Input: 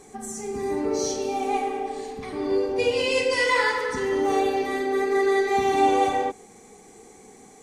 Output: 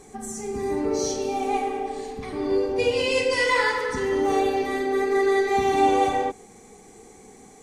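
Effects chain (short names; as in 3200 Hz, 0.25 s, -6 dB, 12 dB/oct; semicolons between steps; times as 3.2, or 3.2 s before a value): low shelf 120 Hz +6.5 dB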